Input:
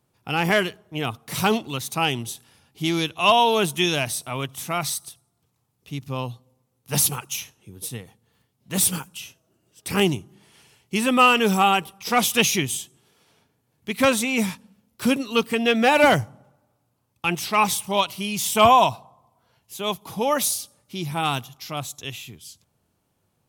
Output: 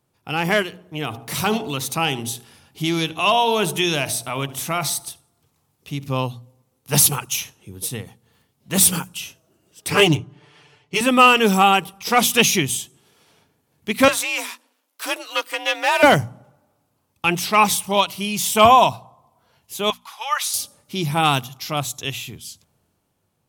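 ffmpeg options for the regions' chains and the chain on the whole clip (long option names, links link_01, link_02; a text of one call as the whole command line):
ffmpeg -i in.wav -filter_complex "[0:a]asettb=1/sr,asplit=3[link_01][link_02][link_03];[link_01]atrim=end=0.624[link_04];[link_02]atrim=start=0.62:end=6.1,asetpts=PTS-STARTPTS,afade=type=in:duration=0.004:curve=qsin,afade=type=out:start_time=5.476:duration=0.004:curve=qsin,bandreject=frequency=62.46:width_type=h:width=4,bandreject=frequency=124.92:width_type=h:width=4,bandreject=frequency=187.38:width_type=h:width=4,bandreject=frequency=249.84:width_type=h:width=4,bandreject=frequency=312.3:width_type=h:width=4,bandreject=frequency=374.76:width_type=h:width=4,bandreject=frequency=437.22:width_type=h:width=4,bandreject=frequency=499.68:width_type=h:width=4,bandreject=frequency=562.14:width_type=h:width=4,bandreject=frequency=624.6:width_type=h:width=4,bandreject=frequency=687.06:width_type=h:width=4,bandreject=frequency=749.52:width_type=h:width=4,bandreject=frequency=811.98:width_type=h:width=4,bandreject=frequency=874.44:width_type=h:width=4,bandreject=frequency=936.9:width_type=h:width=4,acompressor=threshold=-32dB:ratio=1.5:attack=3.2:release=140:knee=1:detection=peak,asplit=2[link_05][link_06];[link_06]adelay=73,lowpass=frequency=1700:poles=1,volume=-17dB,asplit=2[link_07][link_08];[link_08]adelay=73,lowpass=frequency=1700:poles=1,volume=0.48,asplit=2[link_09][link_10];[link_10]adelay=73,lowpass=frequency=1700:poles=1,volume=0.48,asplit=2[link_11][link_12];[link_12]adelay=73,lowpass=frequency=1700:poles=1,volume=0.48[link_13];[link_05][link_07][link_09][link_11][link_13]amix=inputs=5:normalize=0,atrim=end_sample=241668[link_14];[link_03]atrim=start=6.096[link_15];[link_04][link_14]acrossfade=duration=0.004:curve1=hsin:curve2=qsin[link_16];[link_16][link_15]acrossfade=duration=0.004:curve1=qsin:curve2=hsin,asettb=1/sr,asplit=3[link_17][link_18][link_19];[link_17]atrim=end=9.904[link_20];[link_18]atrim=start=9.9:end=11.01,asetpts=PTS-STARTPTS,afade=type=in:duration=0.004:curve=qsin,afade=type=out:start_time=1.106:duration=0.004:curve=qsin,equalizer=frequency=210:width_type=o:width=0.48:gain=-12,aecho=1:1:6.8:0.97,atrim=end_sample=48951,adynamicsmooth=sensitivity=8:basefreq=3600[link_21];[link_19]atrim=start=11.006[link_22];[link_20][link_21]acrossfade=duration=0.004:curve1=hsin:curve2=qsin[link_23];[link_23][link_22]acrossfade=duration=0.004:curve1=qsin:curve2=hsin,asettb=1/sr,asplit=3[link_24][link_25][link_26];[link_24]atrim=end=14.084[link_27];[link_25]atrim=start=14.08:end=16.03,asetpts=PTS-STARTPTS,afade=type=in:duration=0.004:curve=qsin,afade=type=out:start_time=1.946:duration=0.004:curve=qsin,aeval=exprs='if(lt(val(0),0),0.447*val(0),val(0))':channel_layout=same,highpass=710,afreqshift=55[link_28];[link_26]atrim=start=16.026[link_29];[link_27][link_28]acrossfade=duration=0.004:curve1=hsin:curve2=qsin[link_30];[link_30][link_29]acrossfade=duration=0.004:curve1=qsin:curve2=hsin,asettb=1/sr,asplit=3[link_31][link_32][link_33];[link_31]atrim=end=19.904[link_34];[link_32]atrim=start=19.9:end=20.54,asetpts=PTS-STARTPTS,afade=type=in:duration=0.004:curve=qsin,afade=type=out:start_time=0.636:duration=0.004:curve=qsin,highpass=frequency=1100:width=0.5412,highpass=frequency=1100:width=1.3066,aemphasis=mode=reproduction:type=50kf[link_35];[link_33]atrim=start=20.536[link_36];[link_34][link_35]acrossfade=duration=0.004:curve1=hsin:curve2=qsin[link_37];[link_37][link_36]acrossfade=duration=0.004:curve1=qsin:curve2=hsin,bandreject=frequency=60:width_type=h:width=6,bandreject=frequency=120:width_type=h:width=6,bandreject=frequency=180:width_type=h:width=6,bandreject=frequency=240:width_type=h:width=6,dynaudnorm=framelen=100:gausssize=17:maxgain=7dB" out.wav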